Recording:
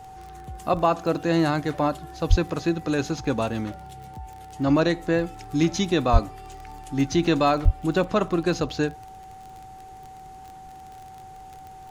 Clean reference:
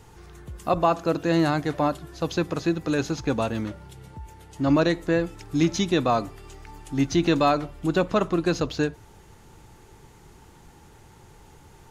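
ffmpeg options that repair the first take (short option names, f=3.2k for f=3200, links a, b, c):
-filter_complex "[0:a]adeclick=t=4,bandreject=f=760:w=30,asplit=3[a][b][c];[a]afade=t=out:st=2.29:d=0.02[d];[b]highpass=f=140:w=0.5412,highpass=f=140:w=1.3066,afade=t=in:st=2.29:d=0.02,afade=t=out:st=2.41:d=0.02[e];[c]afade=t=in:st=2.41:d=0.02[f];[d][e][f]amix=inputs=3:normalize=0,asplit=3[g][h][i];[g]afade=t=out:st=6.12:d=0.02[j];[h]highpass=f=140:w=0.5412,highpass=f=140:w=1.3066,afade=t=in:st=6.12:d=0.02,afade=t=out:st=6.24:d=0.02[k];[i]afade=t=in:st=6.24:d=0.02[l];[j][k][l]amix=inputs=3:normalize=0,asplit=3[m][n][o];[m]afade=t=out:st=7.64:d=0.02[p];[n]highpass=f=140:w=0.5412,highpass=f=140:w=1.3066,afade=t=in:st=7.64:d=0.02,afade=t=out:st=7.76:d=0.02[q];[o]afade=t=in:st=7.76:d=0.02[r];[p][q][r]amix=inputs=3:normalize=0"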